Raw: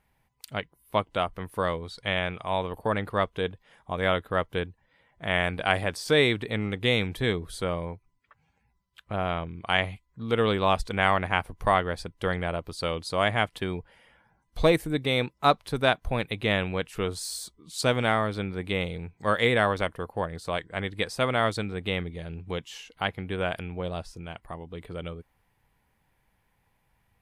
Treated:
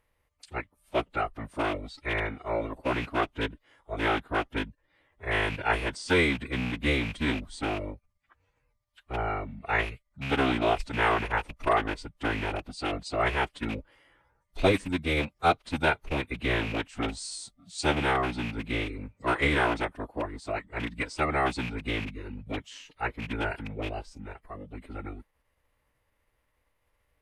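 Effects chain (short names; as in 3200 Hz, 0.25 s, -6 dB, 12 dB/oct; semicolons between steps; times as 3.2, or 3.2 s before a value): rattling part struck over -32 dBFS, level -22 dBFS; formant-preserving pitch shift -9 st; gain -1.5 dB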